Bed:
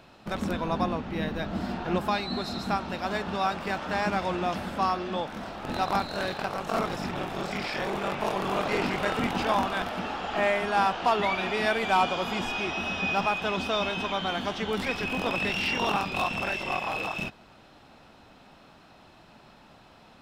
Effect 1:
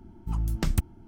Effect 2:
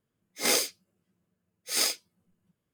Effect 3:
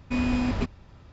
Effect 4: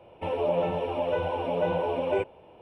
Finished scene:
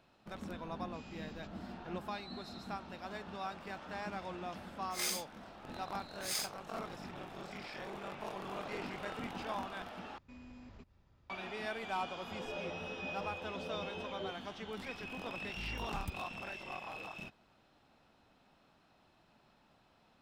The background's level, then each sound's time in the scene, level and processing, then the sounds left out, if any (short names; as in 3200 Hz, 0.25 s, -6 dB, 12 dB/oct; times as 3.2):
bed -14.5 dB
0.82 add 3 -17.5 dB + steep high-pass 2600 Hz
4.54 add 2 -11 dB + HPF 870 Hz
10.18 replace with 3 -17.5 dB + compressor 2:1, threshold -41 dBFS
12.08 add 4 -15 dB + Bessel low-pass 520 Hz
15.3 add 1 -17.5 dB